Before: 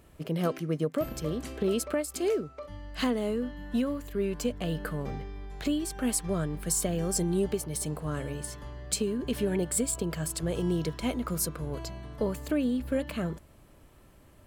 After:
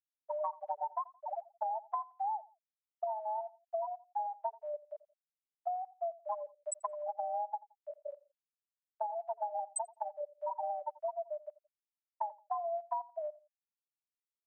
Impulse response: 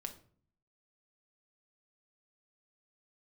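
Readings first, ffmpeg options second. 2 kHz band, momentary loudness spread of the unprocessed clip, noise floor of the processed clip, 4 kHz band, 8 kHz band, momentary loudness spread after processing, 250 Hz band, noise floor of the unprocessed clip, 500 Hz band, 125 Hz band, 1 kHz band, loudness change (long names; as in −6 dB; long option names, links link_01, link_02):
below −30 dB, 8 LU, below −85 dBFS, below −40 dB, −16.5 dB, 7 LU, below −40 dB, −56 dBFS, −8.5 dB, below −40 dB, +7.0 dB, −8.5 dB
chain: -filter_complex "[0:a]lowpass=9600,afftfilt=real='re*gte(hypot(re,im),0.251)':imag='im*gte(hypot(re,im),0.251)':win_size=1024:overlap=0.75,highpass=frequency=1100:poles=1,adynamicequalizer=threshold=0.00126:dfrequency=1500:dqfactor=0.92:tfrequency=1500:tqfactor=0.92:attack=5:release=100:ratio=0.375:range=2:mode=boostabove:tftype=bell,acompressor=threshold=-49dB:ratio=8,afreqshift=430,asplit=2[link_01][link_02];[link_02]adelay=86,lowpass=frequency=2400:poles=1,volume=-19.5dB,asplit=2[link_03][link_04];[link_04]adelay=86,lowpass=frequency=2400:poles=1,volume=0.3[link_05];[link_01][link_03][link_05]amix=inputs=3:normalize=0,volume=15dB"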